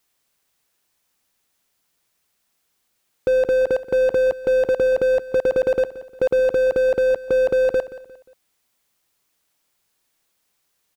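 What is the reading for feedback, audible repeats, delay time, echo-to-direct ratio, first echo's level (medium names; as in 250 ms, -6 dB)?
38%, 3, 177 ms, -15.5 dB, -16.0 dB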